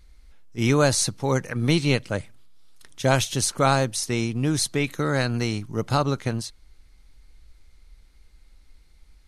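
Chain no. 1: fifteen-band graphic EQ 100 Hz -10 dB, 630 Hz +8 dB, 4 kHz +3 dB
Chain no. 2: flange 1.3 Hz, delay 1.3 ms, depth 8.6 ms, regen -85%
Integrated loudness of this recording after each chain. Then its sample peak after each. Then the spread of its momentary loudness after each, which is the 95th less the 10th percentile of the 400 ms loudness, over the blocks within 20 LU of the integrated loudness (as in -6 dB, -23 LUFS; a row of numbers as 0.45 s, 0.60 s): -22.0 LUFS, -28.0 LUFS; -2.0 dBFS, -9.5 dBFS; 11 LU, 9 LU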